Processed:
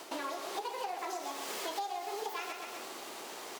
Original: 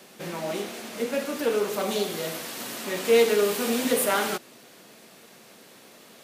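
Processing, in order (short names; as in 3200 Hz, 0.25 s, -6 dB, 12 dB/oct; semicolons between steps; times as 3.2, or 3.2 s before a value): reverse; upward compressor, threshold -37 dBFS; reverse; high shelf 6300 Hz -8 dB; feedback echo 0.217 s, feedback 36%, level -9.5 dB; speed mistake 45 rpm record played at 78 rpm; compressor 12:1, threshold -36 dBFS, peak gain reduction 21 dB; gain +1 dB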